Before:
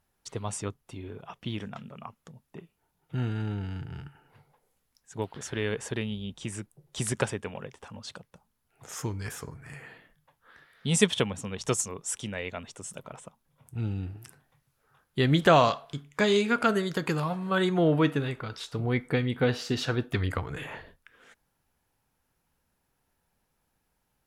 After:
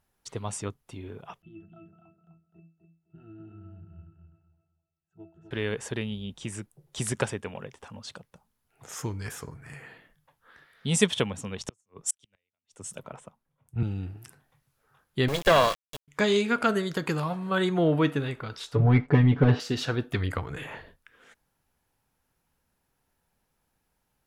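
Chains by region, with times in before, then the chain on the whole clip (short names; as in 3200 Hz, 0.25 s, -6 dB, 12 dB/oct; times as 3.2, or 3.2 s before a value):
1.42–5.51 octave resonator E, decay 0.31 s + feedback echo 0.254 s, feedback 25%, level -6 dB
11.62–13.83 flipped gate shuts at -22 dBFS, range -41 dB + three-band expander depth 70%
15.28–16.08 minimum comb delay 1.8 ms + sample gate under -30.5 dBFS
18.75–19.6 sample leveller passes 2 + tape spacing loss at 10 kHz 34 dB + comb 7 ms, depth 89%
whole clip: dry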